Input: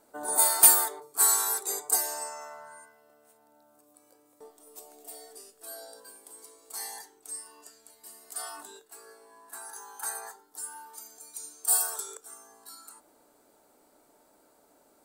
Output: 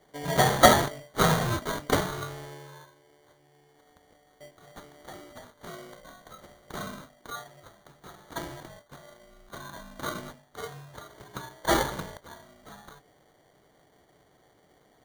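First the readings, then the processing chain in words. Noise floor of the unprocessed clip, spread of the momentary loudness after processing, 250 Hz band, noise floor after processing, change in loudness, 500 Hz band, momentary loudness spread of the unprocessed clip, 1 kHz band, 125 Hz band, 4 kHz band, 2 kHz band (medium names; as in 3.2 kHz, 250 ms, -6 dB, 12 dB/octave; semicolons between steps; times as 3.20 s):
-64 dBFS, 22 LU, +19.5 dB, -63 dBFS, -2.5 dB, +12.5 dB, 24 LU, +8.0 dB, no reading, +6.0 dB, +9.5 dB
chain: every band turned upside down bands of 1 kHz; sample-and-hold 17×; trim +1 dB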